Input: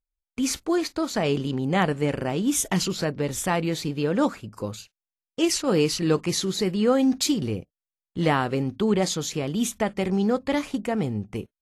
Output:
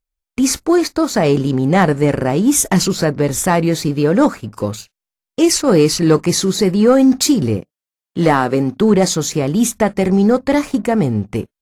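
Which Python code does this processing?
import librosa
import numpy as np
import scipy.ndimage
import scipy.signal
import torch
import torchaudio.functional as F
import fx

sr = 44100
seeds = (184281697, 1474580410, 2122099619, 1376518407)

y = fx.highpass(x, sr, hz=150.0, slope=12, at=(7.57, 8.81))
y = fx.leveller(y, sr, passes=1)
y = fx.dynamic_eq(y, sr, hz=3100.0, q=1.9, threshold_db=-47.0, ratio=4.0, max_db=-8)
y = y * librosa.db_to_amplitude(7.0)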